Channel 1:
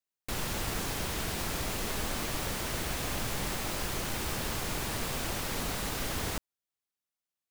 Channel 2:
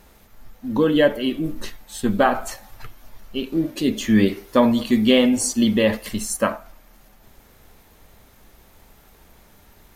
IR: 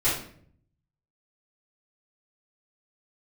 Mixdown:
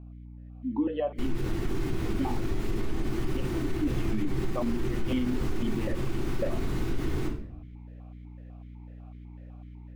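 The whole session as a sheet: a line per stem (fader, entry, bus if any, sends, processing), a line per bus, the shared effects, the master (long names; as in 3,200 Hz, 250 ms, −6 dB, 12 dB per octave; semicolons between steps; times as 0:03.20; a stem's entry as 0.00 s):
−6.5 dB, 0.90 s, send −10 dB, gate on every frequency bin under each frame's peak −30 dB strong; low shelf with overshoot 450 Hz +6 dB, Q 3
−5.0 dB, 0.00 s, no send, automatic gain control gain up to 10.5 dB; notch filter 1,600 Hz, Q 27; formant filter that steps through the vowels 8 Hz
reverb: on, RT60 0.60 s, pre-delay 3 ms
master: mains hum 60 Hz, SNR 19 dB; high-shelf EQ 3,500 Hz −12 dB; brickwall limiter −19.5 dBFS, peak gain reduction 8.5 dB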